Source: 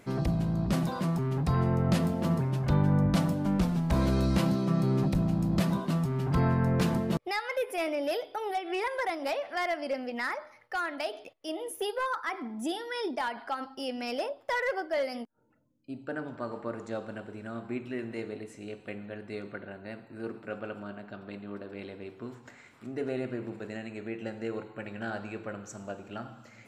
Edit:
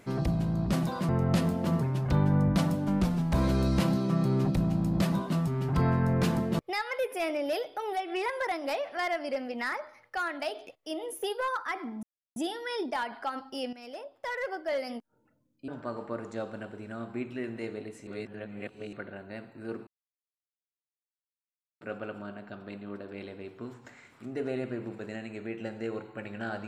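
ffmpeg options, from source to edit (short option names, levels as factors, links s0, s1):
-filter_complex "[0:a]asplit=8[s0][s1][s2][s3][s4][s5][s6][s7];[s0]atrim=end=1.092[s8];[s1]atrim=start=1.668:end=12.61,asetpts=PTS-STARTPTS,afade=t=out:st=10.938:d=0.004:c=hsin,apad=pad_dur=0.33[s9];[s2]atrim=start=12.61:end=13.98,asetpts=PTS-STARTPTS,afade=t=in:d=0.004:c=hsin,afade=t=out:st=1.366:d=0.004:c=hsin:silence=0.188365[s10];[s3]atrim=start=13.98:end=15.932,asetpts=PTS-STARTPTS,afade=t=in:d=1.23:silence=0.188365[s11];[s4]atrim=start=16.228:end=18.622[s12];[s5]atrim=start=18.618:end=19.482,asetpts=PTS-STARTPTS,areverse[s13];[s6]atrim=start=19.478:end=20.42,asetpts=PTS-STARTPTS,afade=t=out:st=0.938:d=0.004:c=hsin,apad=pad_dur=1.94[s14];[s7]atrim=start=20.42,asetpts=PTS-STARTPTS,afade=t=in:d=0.004:c=hsin[s15];[s9][s10][s11]concat=n=3:v=0:a=1[s16];[s8][s16]acrossfade=d=0.004:c1=hsin:c2=hsin[s17];[s17][s12]acrossfade=d=0.004:c1=hsin:c2=hsin[s18];[s18][s13]acrossfade=d=0.004:c1=hsin:c2=hsin[s19];[s14][s15]concat=n=2:v=0:a=1[s20];[s19][s20]acrossfade=d=0.004:c1=hsin:c2=hsin"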